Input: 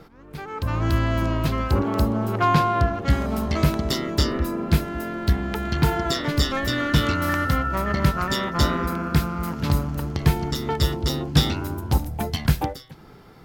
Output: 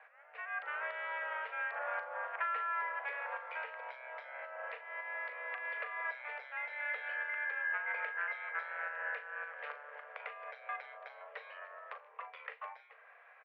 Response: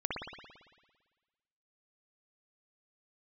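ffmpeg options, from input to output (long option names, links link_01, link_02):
-filter_complex "[0:a]aderivative,acompressor=threshold=-41dB:ratio=10,asplit=2[link_01][link_02];[link_02]adelay=39,volume=-11dB[link_03];[link_01][link_03]amix=inputs=2:normalize=0,highpass=frequency=170:width_type=q:width=0.5412,highpass=frequency=170:width_type=q:width=1.307,lowpass=frequency=2000:width_type=q:width=0.5176,lowpass=frequency=2000:width_type=q:width=0.7071,lowpass=frequency=2000:width_type=q:width=1.932,afreqshift=300,volume=9.5dB"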